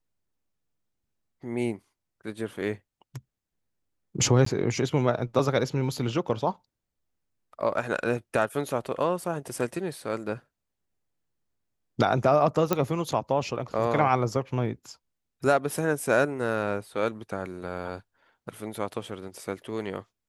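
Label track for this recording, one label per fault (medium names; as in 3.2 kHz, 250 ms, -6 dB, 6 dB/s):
4.450000	4.460000	dropout
12.730000	12.730000	pop -9 dBFS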